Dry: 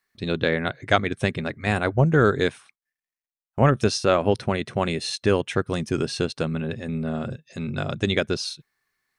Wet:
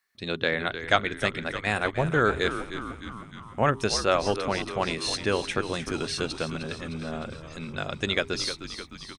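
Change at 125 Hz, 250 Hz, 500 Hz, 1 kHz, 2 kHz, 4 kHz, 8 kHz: -8.5, -6.5, -4.5, -1.5, 0.0, +0.5, +0.5 dB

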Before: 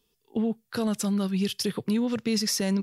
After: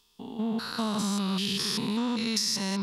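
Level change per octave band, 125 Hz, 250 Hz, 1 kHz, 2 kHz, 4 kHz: -3.5, -3.0, +5.0, +1.5, +3.5 dB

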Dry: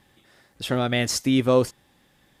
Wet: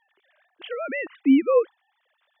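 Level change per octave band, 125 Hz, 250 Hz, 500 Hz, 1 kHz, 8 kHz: under -30 dB, +2.0 dB, 0.0 dB, -3.5 dB, under -40 dB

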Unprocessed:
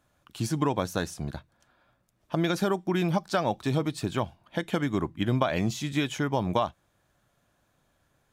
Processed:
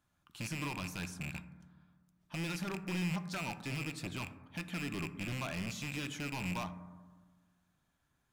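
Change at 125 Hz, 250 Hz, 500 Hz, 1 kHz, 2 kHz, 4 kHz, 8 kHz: -10.0, -11.5, -18.0, -14.0, -5.0, -7.5, -6.0 dB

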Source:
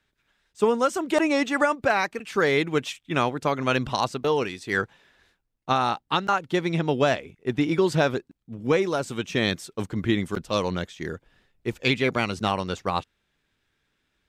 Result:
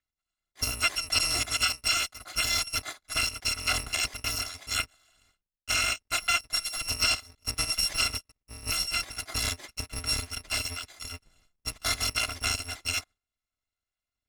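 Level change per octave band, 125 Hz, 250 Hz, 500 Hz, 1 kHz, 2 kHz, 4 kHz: -10.0, -21.0, -21.5, -11.0, -2.5, +5.5 dB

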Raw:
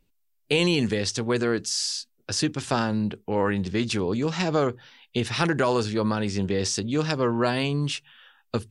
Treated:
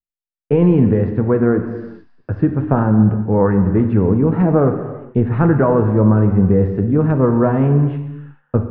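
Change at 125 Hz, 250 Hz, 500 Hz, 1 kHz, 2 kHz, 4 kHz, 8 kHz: +14.5 dB, +11.5 dB, +9.0 dB, +5.5 dB, -2.0 dB, under -25 dB, under -40 dB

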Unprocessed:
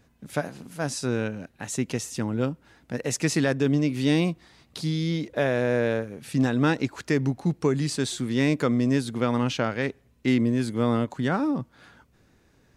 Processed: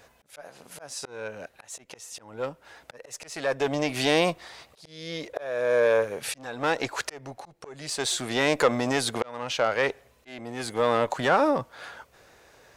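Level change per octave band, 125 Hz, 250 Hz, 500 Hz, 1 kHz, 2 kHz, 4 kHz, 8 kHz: -12.5, -9.5, +1.5, +4.5, +2.0, +3.0, 0.0 dB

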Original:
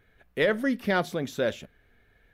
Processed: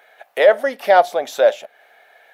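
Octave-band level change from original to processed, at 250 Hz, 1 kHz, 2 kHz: -7.5, +17.0, +7.0 dB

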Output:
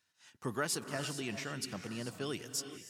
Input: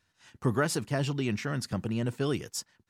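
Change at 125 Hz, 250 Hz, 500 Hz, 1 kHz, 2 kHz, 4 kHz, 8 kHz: -13.5, -10.0, -8.5, -6.0, -5.0, -2.0, -0.5 dB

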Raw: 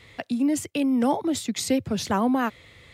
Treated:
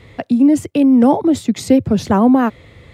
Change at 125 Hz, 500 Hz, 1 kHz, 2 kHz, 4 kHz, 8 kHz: +12.0, +10.5, +8.0, +3.5, +0.5, 0.0 dB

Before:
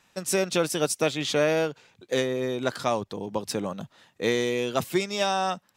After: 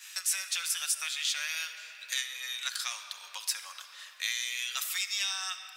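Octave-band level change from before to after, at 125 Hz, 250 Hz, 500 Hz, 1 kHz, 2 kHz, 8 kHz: under -40 dB, under -40 dB, -39.0 dB, -15.5 dB, -2.5 dB, +2.5 dB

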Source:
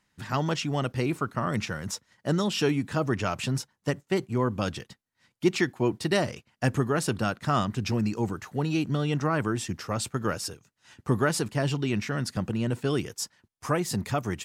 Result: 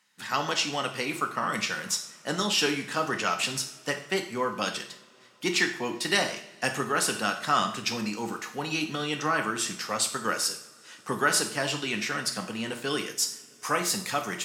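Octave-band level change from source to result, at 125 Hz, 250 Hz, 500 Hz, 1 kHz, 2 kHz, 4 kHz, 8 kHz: -12.0, -5.5, -3.0, +3.0, +5.5, +7.0, +7.0 dB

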